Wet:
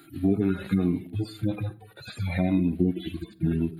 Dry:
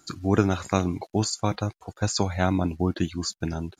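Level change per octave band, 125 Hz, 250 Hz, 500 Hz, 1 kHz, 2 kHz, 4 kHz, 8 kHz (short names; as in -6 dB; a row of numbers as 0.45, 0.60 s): -1.0 dB, +1.5 dB, -4.0 dB, -13.0 dB, -5.0 dB, -11.0 dB, under -20 dB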